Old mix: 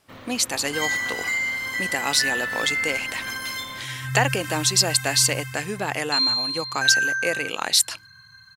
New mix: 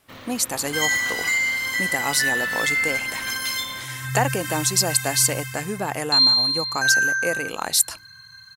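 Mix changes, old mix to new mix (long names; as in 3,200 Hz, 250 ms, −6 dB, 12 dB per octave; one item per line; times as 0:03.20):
speech: remove meter weighting curve D
master: add high-shelf EQ 2,500 Hz +7.5 dB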